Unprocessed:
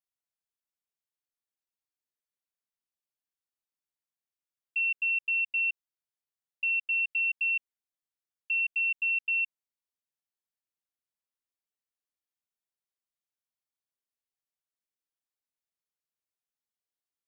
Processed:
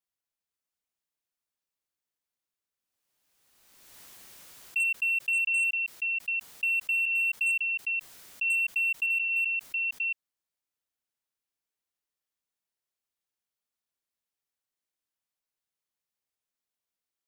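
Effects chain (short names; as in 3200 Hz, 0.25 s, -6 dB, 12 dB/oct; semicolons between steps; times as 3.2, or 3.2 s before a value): reverse delay 0.533 s, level -3 dB; overloaded stage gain 25 dB; backwards sustainer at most 32 dB/s; gain +1 dB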